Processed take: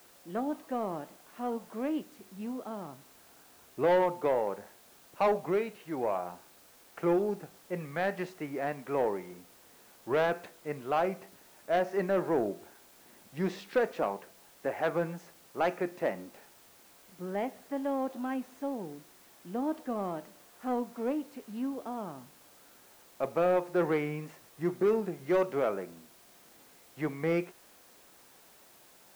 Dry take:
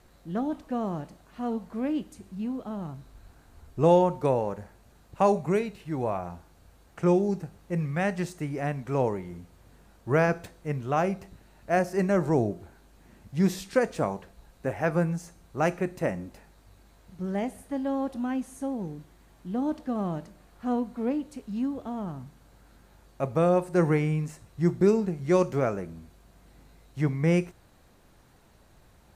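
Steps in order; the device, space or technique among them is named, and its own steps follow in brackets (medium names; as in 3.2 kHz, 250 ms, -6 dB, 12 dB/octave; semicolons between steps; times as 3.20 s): tape answering machine (band-pass 320–3000 Hz; saturation -19.5 dBFS, distortion -13 dB; wow and flutter; white noise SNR 26 dB)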